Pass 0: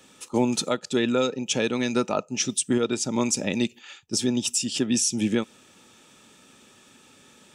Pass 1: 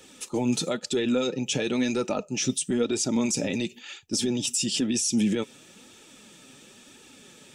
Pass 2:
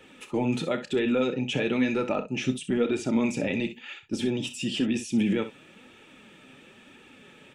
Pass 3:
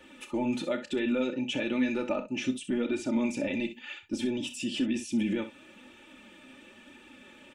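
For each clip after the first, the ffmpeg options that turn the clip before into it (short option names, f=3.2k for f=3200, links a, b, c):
-af "equalizer=f=1.1k:w=1.5:g=-6,alimiter=limit=-20.5dB:level=0:latency=1:release=24,flanger=delay=2:depth=5.8:regen=36:speed=1:shape=triangular,volume=7.5dB"
-filter_complex "[0:a]highshelf=f=3.7k:t=q:w=1.5:g=-12.5,asplit=2[a][b];[b]aecho=0:1:31|63:0.224|0.251[c];[a][c]amix=inputs=2:normalize=0"
-filter_complex "[0:a]aecho=1:1:3.4:0.72,asplit=2[a][b];[b]acompressor=threshold=-32dB:ratio=6,volume=-2.5dB[c];[a][c]amix=inputs=2:normalize=0,volume=-7.5dB"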